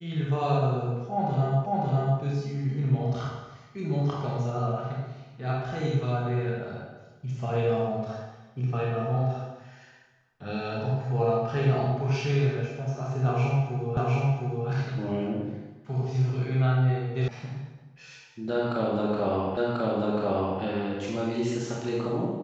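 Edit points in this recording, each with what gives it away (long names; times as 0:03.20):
0:01.66: the same again, the last 0.55 s
0:13.97: the same again, the last 0.71 s
0:17.28: cut off before it has died away
0:19.57: the same again, the last 1.04 s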